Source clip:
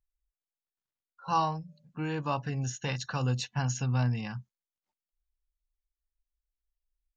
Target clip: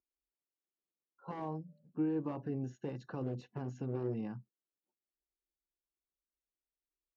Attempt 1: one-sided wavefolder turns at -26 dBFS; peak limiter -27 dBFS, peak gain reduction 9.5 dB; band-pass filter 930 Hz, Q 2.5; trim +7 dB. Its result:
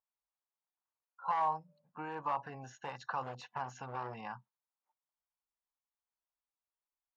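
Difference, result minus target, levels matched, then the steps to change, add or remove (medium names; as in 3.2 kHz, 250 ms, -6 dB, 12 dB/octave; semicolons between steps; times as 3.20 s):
250 Hz band -15.0 dB
change: band-pass filter 340 Hz, Q 2.5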